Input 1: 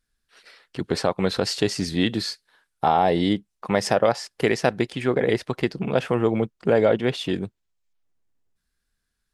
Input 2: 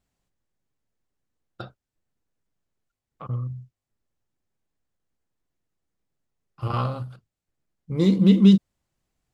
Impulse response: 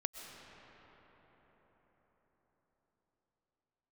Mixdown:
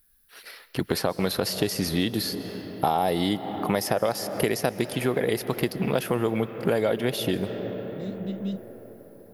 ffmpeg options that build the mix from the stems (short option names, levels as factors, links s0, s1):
-filter_complex "[0:a]aexciter=amount=10.8:drive=7.7:freq=11000,volume=1.41,asplit=2[s0][s1];[s1]volume=0.398[s2];[1:a]volume=0.141[s3];[2:a]atrim=start_sample=2205[s4];[s2][s4]afir=irnorm=-1:irlink=0[s5];[s0][s3][s5]amix=inputs=3:normalize=0,acrossover=split=1000|4400[s6][s7][s8];[s6]acompressor=threshold=0.0708:ratio=4[s9];[s7]acompressor=threshold=0.0178:ratio=4[s10];[s8]acompressor=threshold=0.0224:ratio=4[s11];[s9][s10][s11]amix=inputs=3:normalize=0"